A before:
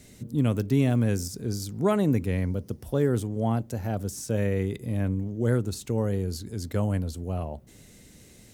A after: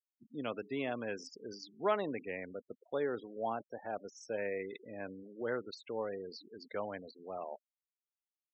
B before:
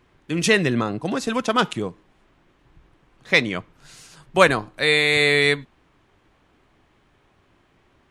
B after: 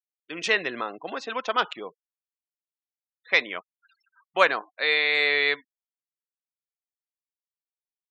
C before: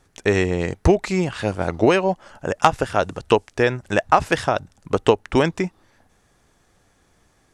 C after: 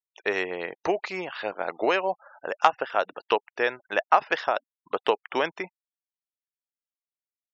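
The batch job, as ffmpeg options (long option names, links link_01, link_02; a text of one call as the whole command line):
ffmpeg -i in.wav -af "highpass=560,lowpass=4400,afftfilt=real='re*gte(hypot(re,im),0.01)':imag='im*gte(hypot(re,im),0.01)':win_size=1024:overlap=0.75,volume=-3dB" out.wav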